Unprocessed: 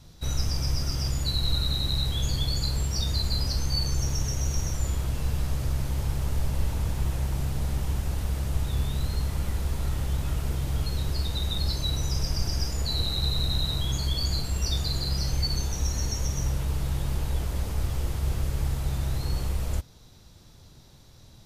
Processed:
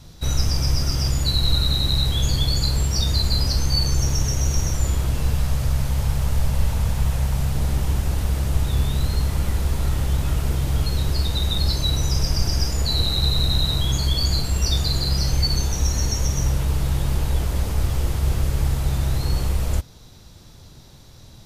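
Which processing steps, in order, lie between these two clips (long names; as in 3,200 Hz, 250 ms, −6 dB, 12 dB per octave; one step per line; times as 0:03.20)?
0:05.34–0:07.55: parametric band 330 Hz −11.5 dB 0.39 octaves
level +6.5 dB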